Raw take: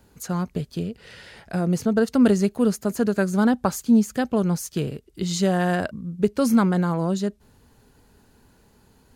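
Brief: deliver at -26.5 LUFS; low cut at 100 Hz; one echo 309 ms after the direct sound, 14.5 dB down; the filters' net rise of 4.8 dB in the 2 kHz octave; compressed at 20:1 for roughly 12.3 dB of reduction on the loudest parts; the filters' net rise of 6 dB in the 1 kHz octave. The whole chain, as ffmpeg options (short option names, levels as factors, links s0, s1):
-af "highpass=100,equalizer=f=1000:t=o:g=7.5,equalizer=f=2000:t=o:g=3,acompressor=threshold=0.0631:ratio=20,aecho=1:1:309:0.188,volume=1.58"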